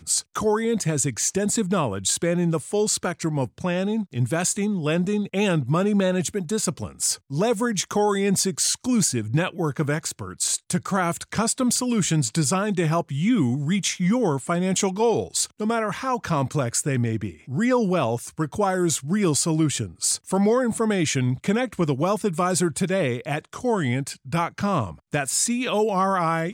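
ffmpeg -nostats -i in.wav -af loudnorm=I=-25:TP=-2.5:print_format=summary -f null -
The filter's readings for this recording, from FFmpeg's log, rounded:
Input Integrated:    -23.3 LUFS
Input True Peak:      -9.6 dBTP
Input LRA:             1.2 LU
Input Threshold:     -33.3 LUFS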